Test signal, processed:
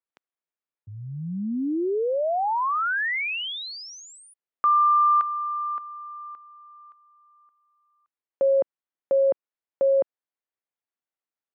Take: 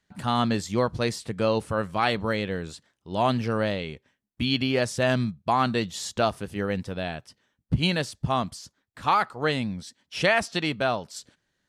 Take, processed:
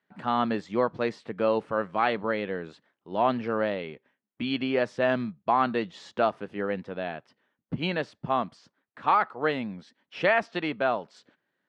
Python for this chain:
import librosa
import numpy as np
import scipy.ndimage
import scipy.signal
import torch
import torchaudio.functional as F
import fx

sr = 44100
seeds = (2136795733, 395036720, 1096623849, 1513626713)

y = fx.bandpass_edges(x, sr, low_hz=240.0, high_hz=2200.0)